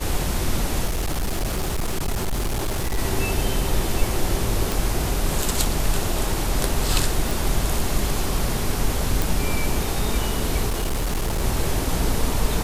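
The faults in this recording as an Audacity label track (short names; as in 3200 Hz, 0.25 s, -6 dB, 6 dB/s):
0.860000	2.990000	clipped -20 dBFS
4.720000	4.720000	pop
7.310000	7.310000	pop
9.220000	9.220000	pop
10.680000	11.420000	clipped -19.5 dBFS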